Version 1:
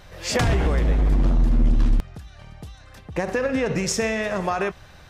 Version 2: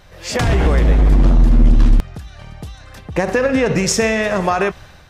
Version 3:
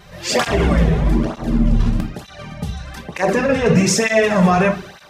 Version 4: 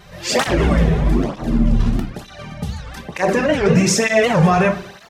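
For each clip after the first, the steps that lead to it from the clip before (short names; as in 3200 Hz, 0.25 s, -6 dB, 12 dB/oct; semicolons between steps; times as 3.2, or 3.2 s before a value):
AGC gain up to 8 dB
limiter -11.5 dBFS, peak gain reduction 7 dB; reverb RT60 0.40 s, pre-delay 5 ms, DRR 3 dB; tape flanging out of phase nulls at 1.1 Hz, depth 3.7 ms; gain +6 dB
feedback echo 96 ms, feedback 50%, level -22.5 dB; record warp 78 rpm, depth 250 cents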